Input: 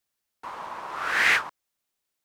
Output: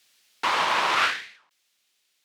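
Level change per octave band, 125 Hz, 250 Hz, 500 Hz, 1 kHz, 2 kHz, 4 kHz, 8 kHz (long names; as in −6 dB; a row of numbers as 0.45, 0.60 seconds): can't be measured, +4.0 dB, +5.5 dB, +7.0 dB, −2.5 dB, +5.5 dB, +1.5 dB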